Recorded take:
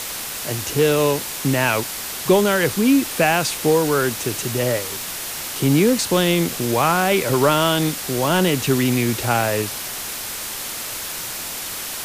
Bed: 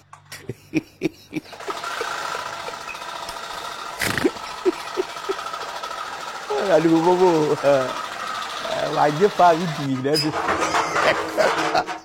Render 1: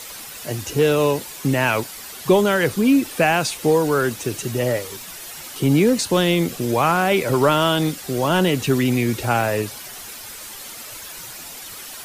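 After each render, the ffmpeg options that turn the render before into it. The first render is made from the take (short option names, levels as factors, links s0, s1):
-af "afftdn=nr=10:nf=-30"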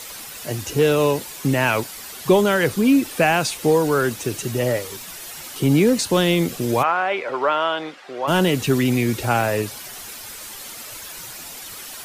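-filter_complex "[0:a]asplit=3[s0][s1][s2];[s0]afade=t=out:st=6.82:d=0.02[s3];[s1]highpass=590,lowpass=2400,afade=t=in:st=6.82:d=0.02,afade=t=out:st=8.27:d=0.02[s4];[s2]afade=t=in:st=8.27:d=0.02[s5];[s3][s4][s5]amix=inputs=3:normalize=0"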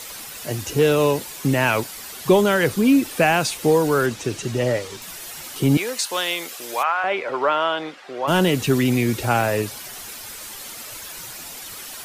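-filter_complex "[0:a]asettb=1/sr,asplit=3[s0][s1][s2];[s0]atrim=end=4.064[s3];[s1]atrim=start=4.06:end=5.02,asetpts=PTS-STARTPTS,afade=t=in:d=0.004:c=qsin,afade=t=out:st=0.956:d=0.004:c=qsin,acrossover=split=8300[s4][s5];[s5]acompressor=threshold=0.00251:ratio=4:attack=1:release=60[s6];[s4][s6]amix=inputs=2:normalize=0[s7];[s2]atrim=start=5.016[s8];[s3][s7]acrossfade=d=0.004:c1=hsin:c2=qsin[s9];[s9][s8]acrossfade=d=0.004:c1=qsin:c2=hsin,asettb=1/sr,asplit=3[s10][s11][s12];[s10]atrim=end=5.774[s13];[s11]atrim=start=5.77:end=7.04,asetpts=PTS-STARTPTS,afade=t=in:d=0.004:c=qsin,afade=t=out:st=1.266:d=0.004:c=qsin,highpass=810[s14];[s12]atrim=start=7.036[s15];[s13][s14]acrossfade=d=0.004:c1=hsin:c2=qsin[s16];[s16][s15]acrossfade=d=0.004:c1=qsin:c2=hsin"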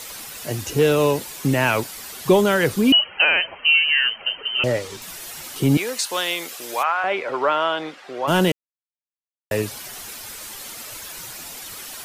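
-filter_complex "[0:a]asettb=1/sr,asplit=3[s0][s1][s2];[s0]atrim=end=2.924[s3];[s1]atrim=start=2.92:end=4.64,asetpts=PTS-STARTPTS,afade=t=in:d=0.004:c=qsin,afade=t=out:st=1.716:d=0.004:c=qsin,lowpass=f=2700:t=q:w=0.5098,lowpass=f=2700:t=q:w=0.6013,lowpass=f=2700:t=q:w=0.9,lowpass=f=2700:t=q:w=2.563,afreqshift=-3200[s4];[s2]atrim=start=4.636[s5];[s3][s4]acrossfade=d=0.004:c1=hsin:c2=qsin[s6];[s6][s5]acrossfade=d=0.004:c1=qsin:c2=hsin,asplit=3[s7][s8][s9];[s7]atrim=end=8.52,asetpts=PTS-STARTPTS,afade=t=out:st=8.516:d=0.004:c=hsin[s10];[s8]atrim=start=8.52:end=9.51,asetpts=PTS-STARTPTS,volume=0[s11];[s9]atrim=start=9.51,asetpts=PTS-STARTPTS,afade=t=in:d=0.004:c=hsin[s12];[s10][s11][s12]concat=n=3:v=0:a=1"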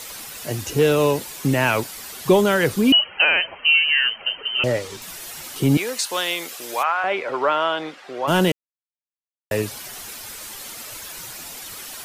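-af anull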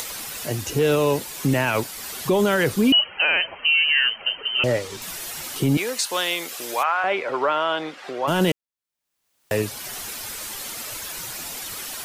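-af "alimiter=limit=0.282:level=0:latency=1:release=13,acompressor=mode=upward:threshold=0.0447:ratio=2.5"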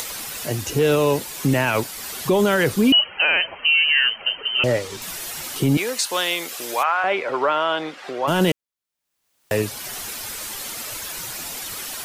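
-af "volume=1.19"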